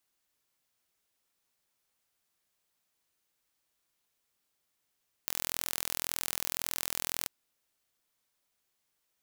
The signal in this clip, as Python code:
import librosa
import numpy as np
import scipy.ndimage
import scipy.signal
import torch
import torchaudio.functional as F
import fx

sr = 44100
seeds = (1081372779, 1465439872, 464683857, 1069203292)

y = 10.0 ** (-5.5 / 20.0) * (np.mod(np.arange(round(1.99 * sr)), round(sr / 41.9)) == 0)